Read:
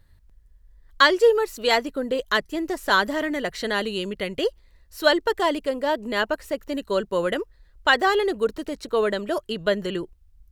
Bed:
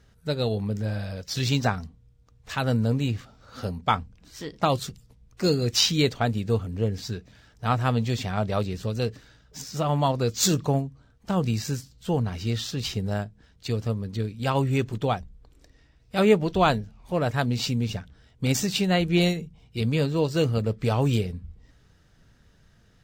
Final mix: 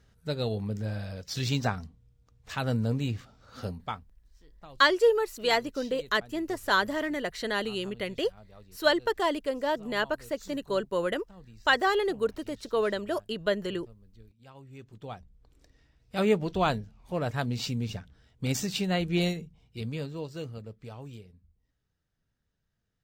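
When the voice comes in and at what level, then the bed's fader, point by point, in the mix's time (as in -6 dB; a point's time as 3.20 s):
3.80 s, -5.0 dB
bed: 3.70 s -4.5 dB
4.27 s -27 dB
14.60 s -27 dB
15.53 s -5.5 dB
19.38 s -5.5 dB
21.22 s -22.5 dB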